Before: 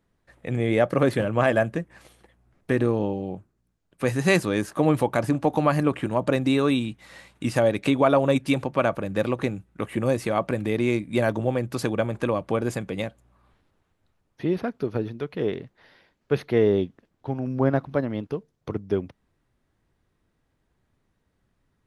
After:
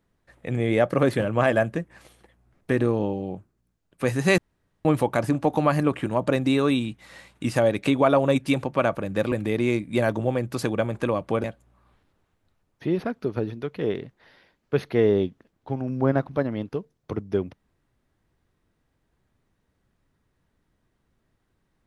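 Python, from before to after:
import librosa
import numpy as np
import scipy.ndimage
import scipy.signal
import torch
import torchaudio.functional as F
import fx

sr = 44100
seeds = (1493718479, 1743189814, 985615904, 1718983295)

y = fx.edit(x, sr, fx.room_tone_fill(start_s=4.38, length_s=0.47),
    fx.cut(start_s=9.32, length_s=1.2),
    fx.cut(start_s=12.64, length_s=0.38), tone=tone)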